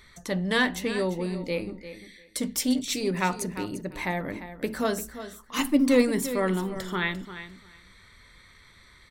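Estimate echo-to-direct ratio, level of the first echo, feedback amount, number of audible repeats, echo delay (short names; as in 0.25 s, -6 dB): -12.5 dB, -12.5 dB, 16%, 2, 0.347 s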